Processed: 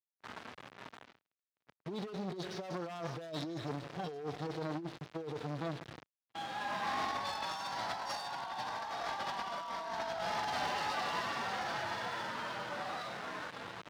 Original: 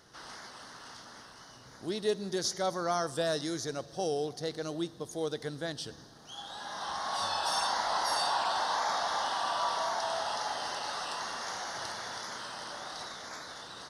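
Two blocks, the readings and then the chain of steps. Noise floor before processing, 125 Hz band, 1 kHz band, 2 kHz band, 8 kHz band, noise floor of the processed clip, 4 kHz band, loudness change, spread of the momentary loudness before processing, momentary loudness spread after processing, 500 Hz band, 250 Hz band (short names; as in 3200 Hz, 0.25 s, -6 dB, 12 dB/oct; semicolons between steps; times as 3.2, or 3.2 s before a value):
-53 dBFS, +0.5 dB, -5.0 dB, -2.0 dB, -13.0 dB, under -85 dBFS, -8.0 dB, -5.5 dB, 17 LU, 13 LU, -7.0 dB, -3.0 dB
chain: median-filter separation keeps harmonic; low-pass opened by the level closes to 1700 Hz, open at -29.5 dBFS; high shelf 4700 Hz +8 dB; bit-crush 8-bit; air absorption 220 m; wavefolder -27 dBFS; gate -58 dBFS, range -30 dB; negative-ratio compressor -39 dBFS, ratio -0.5; one-sided clip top -46.5 dBFS; HPF 97 Hz 12 dB/oct; core saturation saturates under 810 Hz; gain +5.5 dB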